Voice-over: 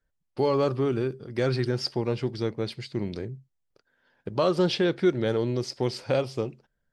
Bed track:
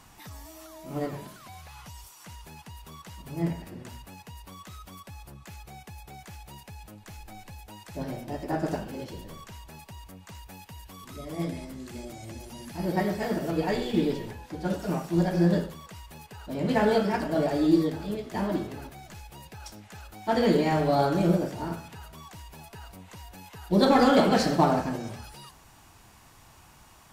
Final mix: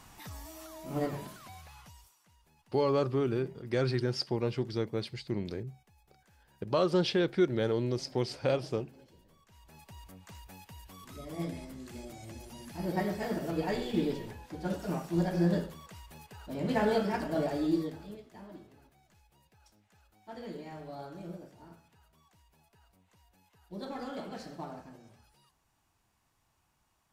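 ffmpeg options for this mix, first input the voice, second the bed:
-filter_complex "[0:a]adelay=2350,volume=0.631[s0];[1:a]volume=5.31,afade=t=out:st=1.25:d=0.98:silence=0.105925,afade=t=in:st=9.46:d=0.54:silence=0.16788,afade=t=out:st=17.38:d=1:silence=0.16788[s1];[s0][s1]amix=inputs=2:normalize=0"

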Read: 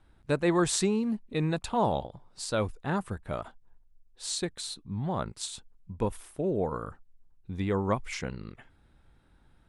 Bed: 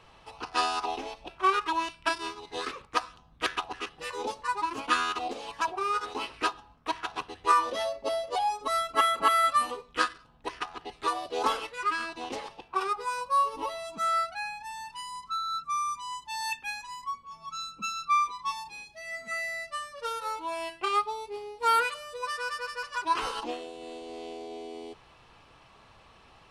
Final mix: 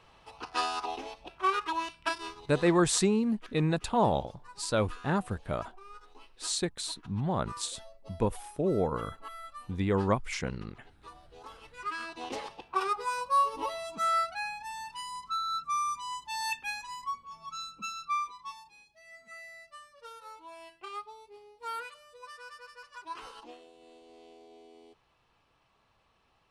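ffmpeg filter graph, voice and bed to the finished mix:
-filter_complex "[0:a]adelay=2200,volume=1.12[s0];[1:a]volume=7.5,afade=t=out:st=2.12:d=0.87:silence=0.125893,afade=t=in:st=11.54:d=0.88:silence=0.0891251,afade=t=out:st=17.13:d=1.58:silence=0.211349[s1];[s0][s1]amix=inputs=2:normalize=0"

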